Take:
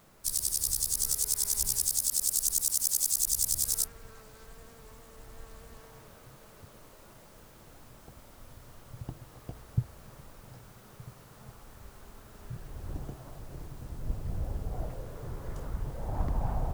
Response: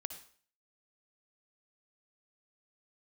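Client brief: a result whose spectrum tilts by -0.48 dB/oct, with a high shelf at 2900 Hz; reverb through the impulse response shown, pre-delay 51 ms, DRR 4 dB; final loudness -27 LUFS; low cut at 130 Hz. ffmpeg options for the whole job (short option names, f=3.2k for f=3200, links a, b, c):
-filter_complex "[0:a]highpass=130,highshelf=f=2.9k:g=4.5,asplit=2[a][b];[1:a]atrim=start_sample=2205,adelay=51[c];[b][c]afir=irnorm=-1:irlink=0,volume=-2dB[d];[a][d]amix=inputs=2:normalize=0,volume=-5.5dB"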